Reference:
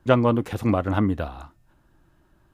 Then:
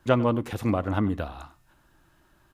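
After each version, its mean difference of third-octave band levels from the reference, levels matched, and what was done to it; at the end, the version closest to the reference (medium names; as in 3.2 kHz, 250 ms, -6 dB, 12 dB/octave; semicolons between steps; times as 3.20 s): 1.5 dB: on a send: delay 96 ms -19 dB; on the sum: tape noise reduction on one side only encoder only; trim -3.5 dB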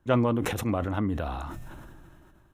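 4.5 dB: band-stop 4.7 kHz, Q 5; decay stretcher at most 24 dB/s; trim -7 dB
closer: first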